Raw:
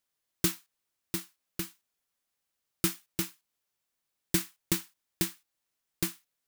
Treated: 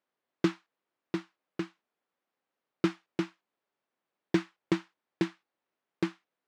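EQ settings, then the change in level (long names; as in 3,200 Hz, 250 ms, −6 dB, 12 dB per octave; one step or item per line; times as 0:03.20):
high-pass filter 250 Hz 12 dB per octave
low-pass filter 1,000 Hz 6 dB per octave
high-frequency loss of the air 130 metres
+8.5 dB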